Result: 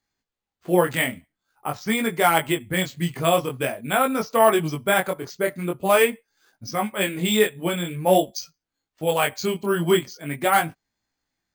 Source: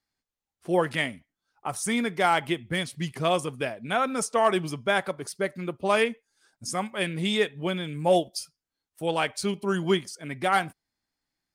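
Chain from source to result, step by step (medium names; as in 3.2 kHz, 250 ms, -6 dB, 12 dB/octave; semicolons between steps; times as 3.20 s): chorus 0.46 Hz, delay 18 ms, depth 5.7 ms; careless resampling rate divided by 4×, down filtered, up hold; trim +7.5 dB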